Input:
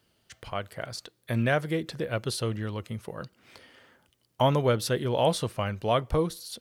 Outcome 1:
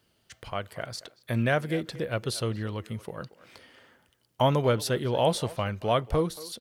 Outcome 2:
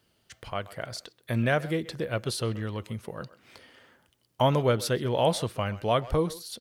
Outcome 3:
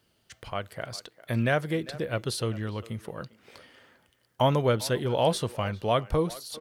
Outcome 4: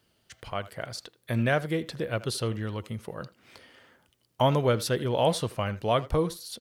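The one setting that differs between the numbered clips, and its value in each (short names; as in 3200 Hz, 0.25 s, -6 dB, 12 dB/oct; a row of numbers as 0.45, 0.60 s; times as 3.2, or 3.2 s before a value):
speakerphone echo, time: 230, 130, 400, 80 ms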